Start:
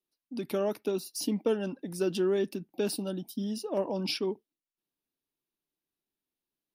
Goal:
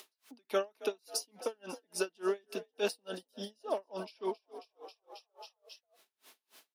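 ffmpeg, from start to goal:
-filter_complex "[0:a]asplit=2[a][b];[b]acompressor=threshold=-43dB:ratio=6,volume=1dB[c];[a][c]amix=inputs=2:normalize=0,highshelf=f=11k:g=-10.5,asplit=7[d][e][f][g][h][i][j];[e]adelay=270,afreqshift=46,volume=-18dB[k];[f]adelay=540,afreqshift=92,volume=-22.3dB[l];[g]adelay=810,afreqshift=138,volume=-26.6dB[m];[h]adelay=1080,afreqshift=184,volume=-30.9dB[n];[i]adelay=1350,afreqshift=230,volume=-35.2dB[o];[j]adelay=1620,afreqshift=276,volume=-39.5dB[p];[d][k][l][m][n][o][p]amix=inputs=7:normalize=0,acompressor=mode=upward:threshold=-40dB:ratio=2.5,highpass=640,aecho=1:1:4.6:0.3,aeval=exprs='val(0)*pow(10,-39*(0.5-0.5*cos(2*PI*3.5*n/s))/20)':c=same,volume=6.5dB"

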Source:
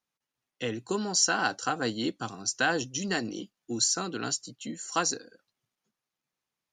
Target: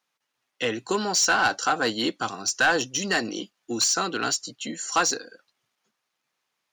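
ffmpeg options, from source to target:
-filter_complex "[0:a]acontrast=62,asplit=2[a][b];[b]highpass=f=720:p=1,volume=15dB,asoftclip=type=tanh:threshold=-6dB[c];[a][c]amix=inputs=2:normalize=0,lowpass=f=4.8k:p=1,volume=-6dB,volume=-5dB"

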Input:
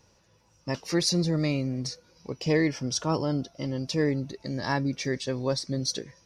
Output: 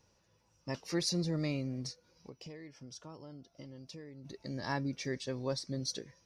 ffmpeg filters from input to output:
-filter_complex "[0:a]asplit=3[a][b][c];[a]afade=t=out:st=1.91:d=0.02[d];[b]acompressor=threshold=-38dB:ratio=12,afade=t=in:st=1.91:d=0.02,afade=t=out:st=4.24:d=0.02[e];[c]afade=t=in:st=4.24:d=0.02[f];[d][e][f]amix=inputs=3:normalize=0,volume=-8dB"

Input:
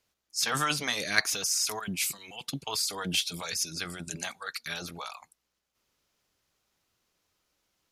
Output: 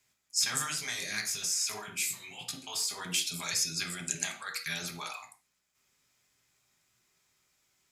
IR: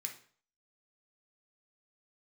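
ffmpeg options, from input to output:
-filter_complex "[0:a]acrossover=split=400|4400[a][b][c];[a]acompressor=threshold=-46dB:ratio=4[d];[b]acompressor=threshold=-38dB:ratio=4[e];[c]acompressor=threshold=-34dB:ratio=4[f];[d][e][f]amix=inputs=3:normalize=0,asplit=3[g][h][i];[g]afade=t=out:st=0.64:d=0.02[j];[h]flanger=delay=16:depth=6.5:speed=2.4,afade=t=in:st=0.64:d=0.02,afade=t=out:st=3:d=0.02[k];[i]afade=t=in:st=3:d=0.02[l];[j][k][l]amix=inputs=3:normalize=0[m];[1:a]atrim=start_sample=2205,afade=t=out:st=0.22:d=0.01,atrim=end_sample=10143[n];[m][n]afir=irnorm=-1:irlink=0,volume=5.5dB"

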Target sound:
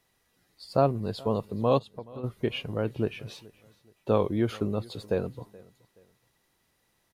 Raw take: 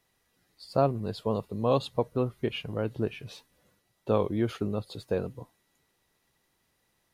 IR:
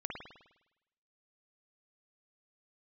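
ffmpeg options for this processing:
-filter_complex "[0:a]asplit=3[a][b][c];[a]afade=t=out:st=1.78:d=0.02[d];[b]acompressor=threshold=-46dB:ratio=2.5,afade=t=in:st=1.78:d=0.02,afade=t=out:st=2.23:d=0.02[e];[c]afade=t=in:st=2.23:d=0.02[f];[d][e][f]amix=inputs=3:normalize=0,aecho=1:1:425|850:0.0708|0.0241,volume=1.5dB"

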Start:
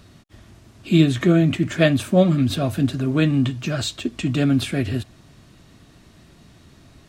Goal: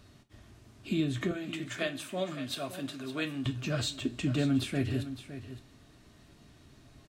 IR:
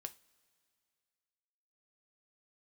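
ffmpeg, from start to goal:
-filter_complex "[0:a]asettb=1/sr,asplit=3[a][b][c];[a]atrim=end=1.314[d];[b]atrim=start=1.31:end=3.46,asetpts=PTS-STARTPTS,afade=t=in:d=0.004:c=qsin,afade=t=out:st=2.146:d=0.004:c=qsin,highpass=f=910:p=1[e];[c]atrim=start=3.456[f];[d][e]acrossfade=d=0.004:c1=hsin:c2=qsin[g];[g][f]acrossfade=d=0.004:c1=qsin:c2=hsin,alimiter=limit=-12dB:level=0:latency=1:release=322,aecho=1:1:562:0.237[h];[1:a]atrim=start_sample=2205[i];[h][i]afir=irnorm=-1:irlink=0,volume=-3.5dB"

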